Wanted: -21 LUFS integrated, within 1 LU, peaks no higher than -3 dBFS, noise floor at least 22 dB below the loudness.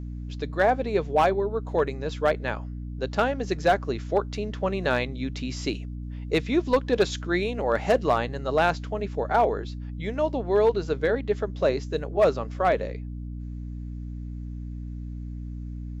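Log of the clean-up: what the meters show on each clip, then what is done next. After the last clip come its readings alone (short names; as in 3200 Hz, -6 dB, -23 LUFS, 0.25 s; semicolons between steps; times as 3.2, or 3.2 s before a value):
clipped 0.3%; flat tops at -13.0 dBFS; hum 60 Hz; harmonics up to 300 Hz; hum level -32 dBFS; loudness -26.0 LUFS; peak -13.0 dBFS; loudness target -21.0 LUFS
-> clip repair -13 dBFS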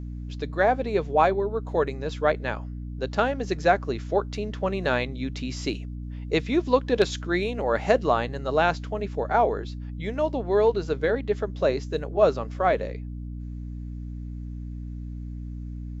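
clipped 0.0%; hum 60 Hz; harmonics up to 300 Hz; hum level -32 dBFS
-> notches 60/120/180/240/300 Hz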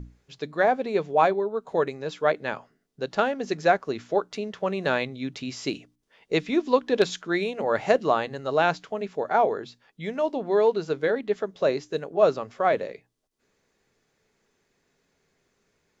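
hum none; loudness -25.5 LUFS; peak -6.0 dBFS; loudness target -21.0 LUFS
-> gain +4.5 dB; limiter -3 dBFS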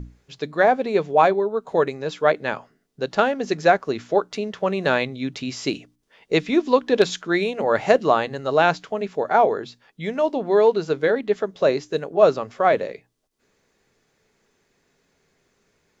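loudness -21.0 LUFS; peak -3.0 dBFS; noise floor -69 dBFS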